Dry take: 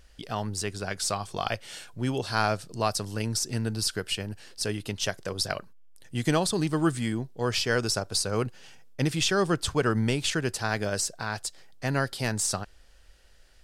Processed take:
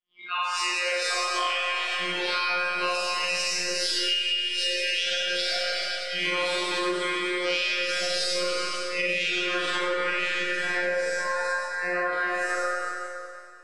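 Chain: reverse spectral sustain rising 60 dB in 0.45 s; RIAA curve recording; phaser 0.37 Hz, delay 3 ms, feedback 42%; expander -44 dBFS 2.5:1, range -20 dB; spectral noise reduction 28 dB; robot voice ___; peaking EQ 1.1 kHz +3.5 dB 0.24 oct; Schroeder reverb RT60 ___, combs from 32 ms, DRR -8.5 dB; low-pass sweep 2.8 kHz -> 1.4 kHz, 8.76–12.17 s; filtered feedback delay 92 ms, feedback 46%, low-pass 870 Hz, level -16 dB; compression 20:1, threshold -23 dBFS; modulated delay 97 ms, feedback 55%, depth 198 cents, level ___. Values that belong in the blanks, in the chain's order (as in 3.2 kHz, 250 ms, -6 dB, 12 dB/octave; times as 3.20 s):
178 Hz, 2.2 s, -18 dB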